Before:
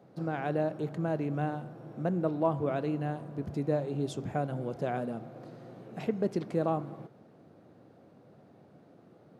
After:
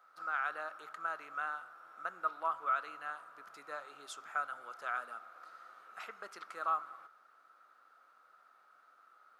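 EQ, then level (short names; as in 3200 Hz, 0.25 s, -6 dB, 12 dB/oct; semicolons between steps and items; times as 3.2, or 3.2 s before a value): resonant high-pass 1300 Hz, resonance Q 13; high shelf 6000 Hz +7 dB; -5.5 dB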